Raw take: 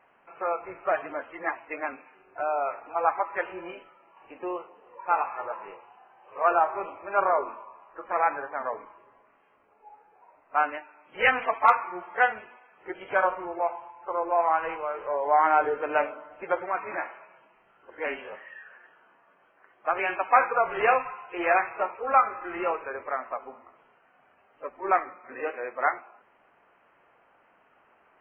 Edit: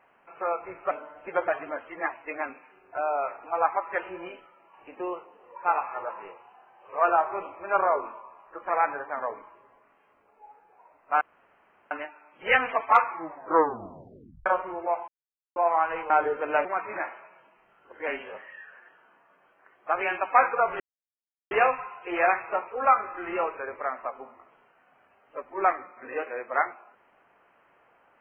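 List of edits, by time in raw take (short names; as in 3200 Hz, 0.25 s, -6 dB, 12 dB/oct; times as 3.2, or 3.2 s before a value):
10.64 insert room tone 0.70 s
11.84 tape stop 1.35 s
13.81–14.29 mute
14.83–15.51 cut
16.06–16.63 move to 0.91
20.78 insert silence 0.71 s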